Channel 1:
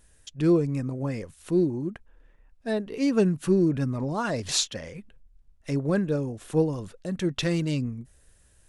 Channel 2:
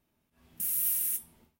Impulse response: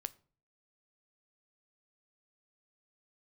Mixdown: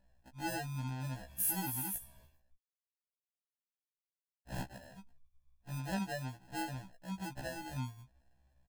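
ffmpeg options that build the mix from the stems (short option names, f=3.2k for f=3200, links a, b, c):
-filter_complex "[0:a]acrusher=samples=38:mix=1:aa=0.000001,volume=-13dB,asplit=3[a][b][c];[a]atrim=end=2.56,asetpts=PTS-STARTPTS,afade=t=out:st=2.556:d=0.004:c=hsin[d];[b]atrim=start=2.56:end=4.48,asetpts=PTS-STARTPTS,volume=0[e];[c]atrim=start=4.48,asetpts=PTS-STARTPTS,afade=t=in:d=0.004:c=hsin[f];[d][e][f]concat=n=3:v=0:a=1,asplit=2[g][h];[1:a]acompressor=mode=upward:threshold=-51dB:ratio=2.5,aecho=1:1:1.8:0.65,adelay=800,volume=-0.5dB[i];[h]apad=whole_len=105746[j];[i][j]sidechaincompress=threshold=-51dB:ratio=8:attack=7.8:release=159[k];[g][k]amix=inputs=2:normalize=0,aecho=1:1:1.2:0.76,afftfilt=real='re*1.73*eq(mod(b,3),0)':imag='im*1.73*eq(mod(b,3),0)':win_size=2048:overlap=0.75"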